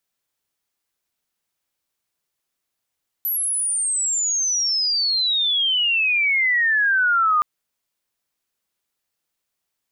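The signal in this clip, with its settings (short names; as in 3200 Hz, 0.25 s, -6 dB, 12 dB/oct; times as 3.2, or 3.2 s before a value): chirp logarithmic 12000 Hz -> 1200 Hz -20 dBFS -> -14.5 dBFS 4.17 s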